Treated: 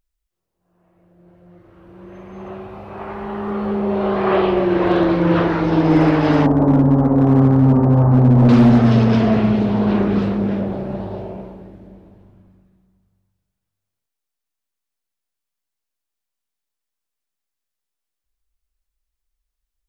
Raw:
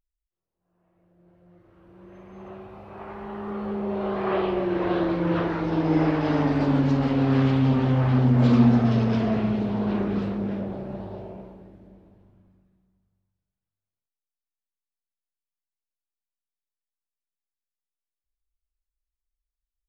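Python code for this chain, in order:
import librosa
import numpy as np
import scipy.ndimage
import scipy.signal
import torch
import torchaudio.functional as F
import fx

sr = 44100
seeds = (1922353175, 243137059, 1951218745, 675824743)

y = fx.lowpass(x, sr, hz=1100.0, slope=24, at=(6.46, 8.49))
y = np.clip(y, -10.0 ** (-15.0 / 20.0), 10.0 ** (-15.0 / 20.0))
y = F.gain(torch.from_numpy(y), 8.5).numpy()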